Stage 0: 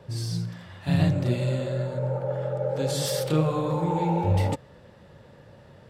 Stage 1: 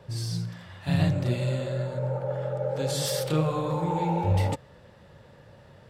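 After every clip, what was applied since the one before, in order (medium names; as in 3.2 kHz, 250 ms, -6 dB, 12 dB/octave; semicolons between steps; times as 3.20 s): peaking EQ 280 Hz -3.5 dB 1.8 oct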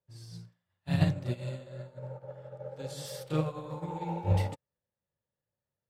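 upward expansion 2.5:1, over -46 dBFS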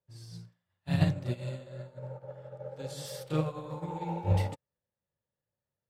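no audible change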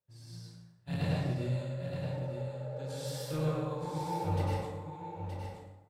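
saturation -23 dBFS, distortion -12 dB; delay 921 ms -8 dB; plate-style reverb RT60 1 s, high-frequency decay 0.65×, pre-delay 85 ms, DRR -4.5 dB; trim -4.5 dB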